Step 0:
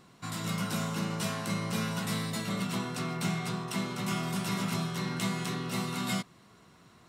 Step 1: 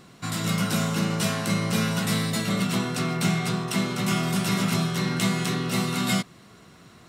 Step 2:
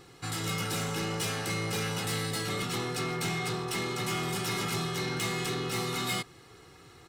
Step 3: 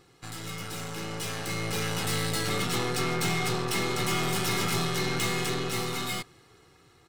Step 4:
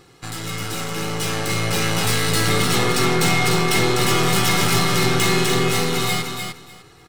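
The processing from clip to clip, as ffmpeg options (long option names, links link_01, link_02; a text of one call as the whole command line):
ffmpeg -i in.wav -af "equalizer=frequency=970:width=3.1:gain=-4.5,volume=8dB" out.wav
ffmpeg -i in.wav -af "aecho=1:1:2.4:0.77,asoftclip=type=tanh:threshold=-23dB,volume=-3.5dB" out.wav
ffmpeg -i in.wav -af "aeval=exprs='0.0473*(cos(1*acos(clip(val(0)/0.0473,-1,1)))-cos(1*PI/2))+0.00944*(cos(4*acos(clip(val(0)/0.0473,-1,1)))-cos(4*PI/2))':channel_layout=same,dynaudnorm=framelen=360:gausssize=9:maxgain=9.5dB,volume=-6dB" out.wav
ffmpeg -i in.wav -af "aecho=1:1:300|600|900:0.531|0.0903|0.0153,volume=9dB" out.wav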